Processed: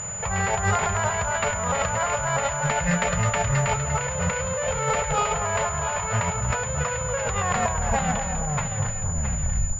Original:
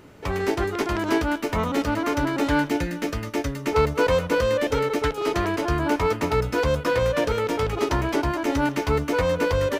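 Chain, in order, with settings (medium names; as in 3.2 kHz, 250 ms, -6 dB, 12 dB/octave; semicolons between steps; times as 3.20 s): tape stop on the ending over 2.81 s; Chebyshev band-stop 160–610 Hz, order 2; compressor with a negative ratio -34 dBFS, ratio -1; two-band feedback delay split 1.5 kHz, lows 238 ms, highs 671 ms, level -7.5 dB; class-D stage that switches slowly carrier 7 kHz; trim +7.5 dB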